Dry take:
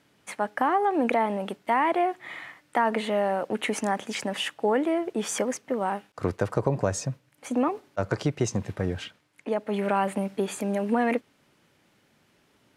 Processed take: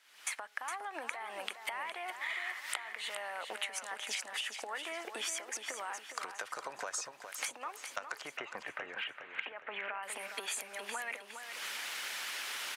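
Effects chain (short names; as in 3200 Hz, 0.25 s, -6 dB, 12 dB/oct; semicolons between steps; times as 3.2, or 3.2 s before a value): recorder AGC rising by 58 dB/s; HPF 1400 Hz 12 dB/oct; harmonic-percussive split percussive +5 dB; 8.21–10.03 inverse Chebyshev low-pass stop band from 5100 Hz, stop band 40 dB; compressor 6:1, threshold -35 dBFS, peak gain reduction 21.5 dB; on a send: feedback echo 0.412 s, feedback 38%, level -8 dB; on the sum: gain -2 dB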